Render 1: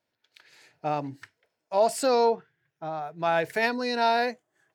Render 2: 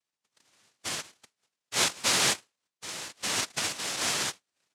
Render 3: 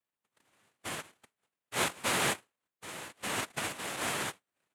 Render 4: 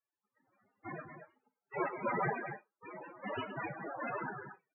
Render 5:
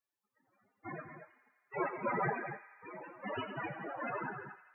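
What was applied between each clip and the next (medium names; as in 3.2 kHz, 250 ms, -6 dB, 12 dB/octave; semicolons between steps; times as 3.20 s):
ladder high-pass 400 Hz, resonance 45%; noise-vocoded speech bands 1
peaking EQ 5.3 kHz -14.5 dB 1.2 oct
loudspeakers at several distances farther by 44 m -10 dB, 79 m -9 dB; loudest bins only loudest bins 8; gated-style reverb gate 80 ms falling, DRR 9 dB; trim +4.5 dB
feedback echo behind a high-pass 84 ms, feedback 75%, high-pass 1.6 kHz, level -12 dB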